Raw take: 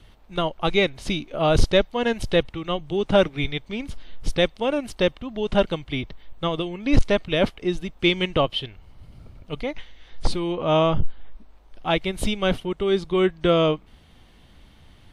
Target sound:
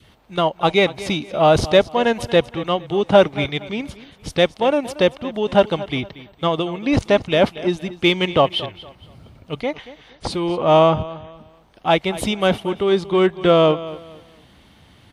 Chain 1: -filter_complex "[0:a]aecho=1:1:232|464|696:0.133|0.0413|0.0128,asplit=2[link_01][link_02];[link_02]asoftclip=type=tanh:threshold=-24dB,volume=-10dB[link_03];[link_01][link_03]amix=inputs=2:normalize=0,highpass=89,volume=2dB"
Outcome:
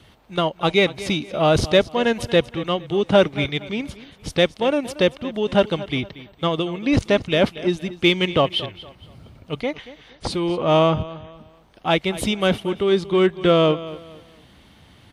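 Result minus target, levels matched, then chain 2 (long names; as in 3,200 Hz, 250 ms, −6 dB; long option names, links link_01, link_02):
1,000 Hz band −2.5 dB
-filter_complex "[0:a]aecho=1:1:232|464|696:0.133|0.0413|0.0128,asplit=2[link_01][link_02];[link_02]asoftclip=type=tanh:threshold=-24dB,volume=-10dB[link_03];[link_01][link_03]amix=inputs=2:normalize=0,highpass=89,adynamicequalizer=threshold=0.0178:dfrequency=810:dqfactor=1.4:tfrequency=810:tqfactor=1.4:attack=5:release=100:ratio=0.333:range=3:mode=boostabove:tftype=bell,volume=2dB"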